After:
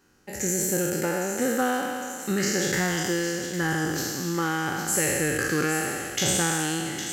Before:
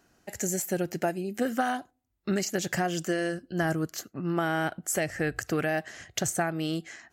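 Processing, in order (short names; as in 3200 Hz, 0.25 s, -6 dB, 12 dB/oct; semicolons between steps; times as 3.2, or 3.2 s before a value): spectral trails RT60 2.18 s; Butterworth band-stop 660 Hz, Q 4.2; thin delay 0.808 s, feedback 62%, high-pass 2600 Hz, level -8 dB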